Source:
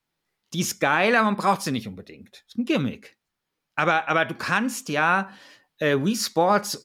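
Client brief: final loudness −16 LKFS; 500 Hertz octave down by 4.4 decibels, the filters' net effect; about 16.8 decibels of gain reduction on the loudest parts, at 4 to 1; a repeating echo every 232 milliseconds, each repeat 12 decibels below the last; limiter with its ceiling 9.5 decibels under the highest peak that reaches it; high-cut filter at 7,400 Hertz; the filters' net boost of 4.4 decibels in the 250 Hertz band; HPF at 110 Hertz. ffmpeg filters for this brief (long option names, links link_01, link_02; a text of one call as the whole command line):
ffmpeg -i in.wav -af "highpass=110,lowpass=7400,equalizer=frequency=250:width_type=o:gain=7.5,equalizer=frequency=500:width_type=o:gain=-7.5,acompressor=threshold=-37dB:ratio=4,alimiter=level_in=3dB:limit=-24dB:level=0:latency=1,volume=-3dB,aecho=1:1:232|464|696:0.251|0.0628|0.0157,volume=23.5dB" out.wav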